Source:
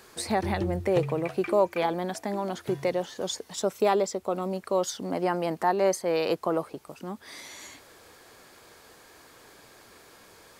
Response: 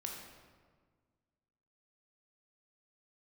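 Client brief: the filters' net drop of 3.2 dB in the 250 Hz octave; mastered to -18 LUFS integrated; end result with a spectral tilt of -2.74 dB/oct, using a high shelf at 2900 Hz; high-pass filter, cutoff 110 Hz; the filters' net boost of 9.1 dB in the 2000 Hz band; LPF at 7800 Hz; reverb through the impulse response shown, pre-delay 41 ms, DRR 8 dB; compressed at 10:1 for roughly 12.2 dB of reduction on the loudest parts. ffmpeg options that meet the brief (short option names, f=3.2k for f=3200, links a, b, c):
-filter_complex "[0:a]highpass=110,lowpass=7.8k,equalizer=f=250:t=o:g=-5.5,equalizer=f=2k:t=o:g=7.5,highshelf=f=2.9k:g=8.5,acompressor=threshold=-30dB:ratio=10,asplit=2[a][b];[1:a]atrim=start_sample=2205,adelay=41[c];[b][c]afir=irnorm=-1:irlink=0,volume=-7dB[d];[a][d]amix=inputs=2:normalize=0,volume=17.5dB"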